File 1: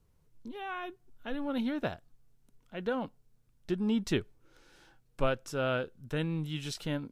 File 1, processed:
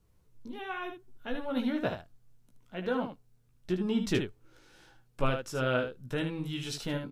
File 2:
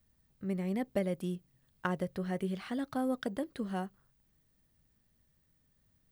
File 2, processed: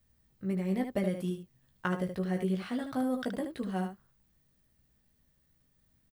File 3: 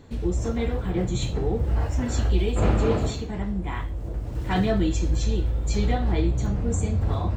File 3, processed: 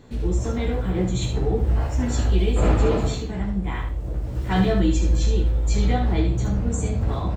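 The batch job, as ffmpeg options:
-af "aecho=1:1:16|75:0.562|0.447"

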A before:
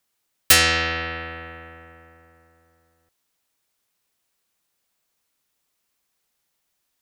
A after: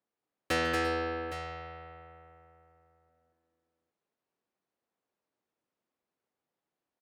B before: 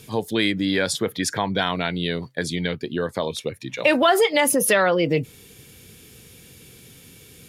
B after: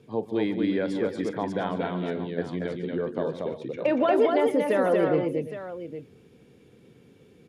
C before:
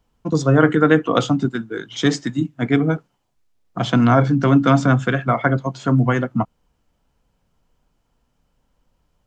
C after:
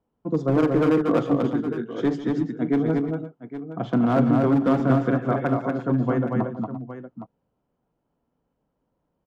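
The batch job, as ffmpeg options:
-filter_complex "[0:a]bandpass=f=370:t=q:w=0.7:csg=0,volume=3.76,asoftclip=hard,volume=0.266,asplit=2[s0][s1];[s1]aecho=0:1:44|145|233|342|350|814:0.141|0.168|0.668|0.168|0.126|0.237[s2];[s0][s2]amix=inputs=2:normalize=0,volume=0.708"

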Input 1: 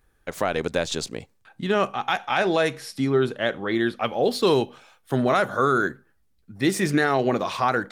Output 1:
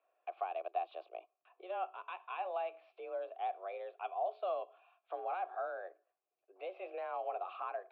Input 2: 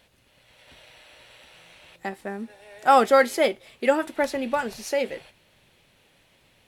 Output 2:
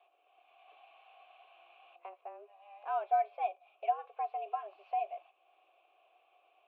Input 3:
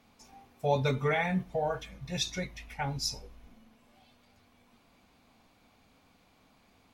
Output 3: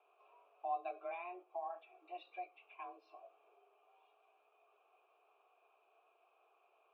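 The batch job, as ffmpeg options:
-filter_complex "[0:a]highpass=f=160:t=q:w=0.5412,highpass=f=160:t=q:w=1.307,lowpass=f=3300:t=q:w=0.5176,lowpass=f=3300:t=q:w=0.7071,lowpass=f=3300:t=q:w=1.932,afreqshift=180,acompressor=threshold=0.00251:ratio=1.5,asplit=3[s0][s1][s2];[s0]bandpass=f=730:t=q:w=8,volume=1[s3];[s1]bandpass=f=1090:t=q:w=8,volume=0.501[s4];[s2]bandpass=f=2440:t=q:w=8,volume=0.355[s5];[s3][s4][s5]amix=inputs=3:normalize=0,volume=1.41"

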